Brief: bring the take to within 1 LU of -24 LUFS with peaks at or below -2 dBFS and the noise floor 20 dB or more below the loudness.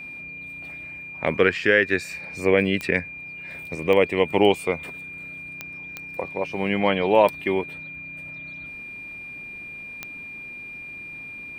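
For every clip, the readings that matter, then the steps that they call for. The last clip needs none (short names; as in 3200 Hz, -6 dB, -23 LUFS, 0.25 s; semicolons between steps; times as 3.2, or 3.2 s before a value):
clicks 5; steady tone 2400 Hz; tone level -35 dBFS; loudness -24.5 LUFS; peak -4.0 dBFS; loudness target -24.0 LUFS
-> de-click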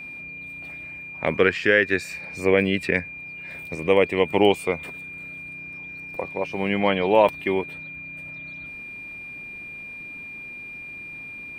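clicks 0; steady tone 2400 Hz; tone level -35 dBFS
-> notch 2400 Hz, Q 30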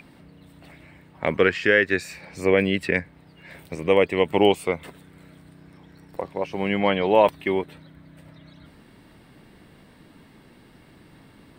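steady tone none; loudness -22.0 LUFS; peak -4.5 dBFS; loudness target -24.0 LUFS
-> gain -2 dB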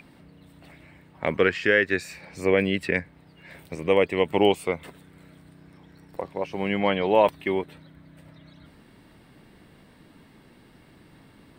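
loudness -24.0 LUFS; peak -6.5 dBFS; noise floor -55 dBFS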